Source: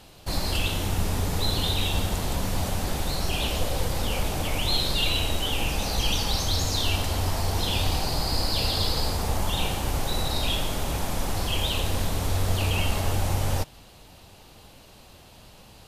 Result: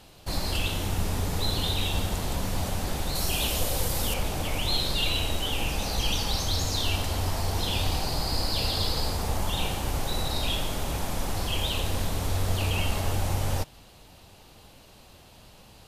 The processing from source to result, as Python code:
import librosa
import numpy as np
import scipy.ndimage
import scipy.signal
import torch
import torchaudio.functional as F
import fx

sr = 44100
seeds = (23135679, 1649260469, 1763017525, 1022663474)

y = fx.high_shelf(x, sr, hz=6500.0, db=11.5, at=(3.15, 4.14))
y = y * 10.0 ** (-2.0 / 20.0)